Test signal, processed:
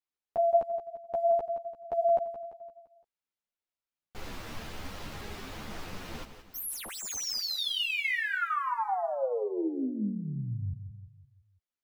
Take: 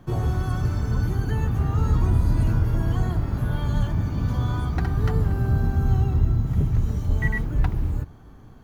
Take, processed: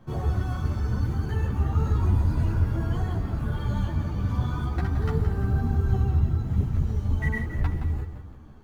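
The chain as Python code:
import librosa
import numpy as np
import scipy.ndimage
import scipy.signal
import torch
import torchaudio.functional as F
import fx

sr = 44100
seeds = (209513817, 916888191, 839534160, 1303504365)

y = scipy.ndimage.median_filter(x, 5, mode='constant')
y = fx.echo_feedback(y, sr, ms=171, feedback_pct=47, wet_db=-10.0)
y = fx.ensemble(y, sr)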